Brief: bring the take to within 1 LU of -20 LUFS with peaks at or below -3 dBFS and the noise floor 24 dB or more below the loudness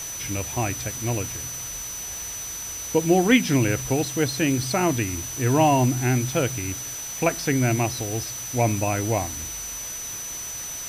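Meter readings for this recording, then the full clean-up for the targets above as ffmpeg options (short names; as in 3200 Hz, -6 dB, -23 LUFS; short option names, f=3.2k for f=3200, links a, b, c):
steady tone 6000 Hz; tone level -32 dBFS; noise floor -34 dBFS; noise floor target -48 dBFS; loudness -24.0 LUFS; peak -4.5 dBFS; loudness target -20.0 LUFS
-> -af "bandreject=f=6k:w=30"
-af "afftdn=nr=14:nf=-34"
-af "volume=4dB,alimiter=limit=-3dB:level=0:latency=1"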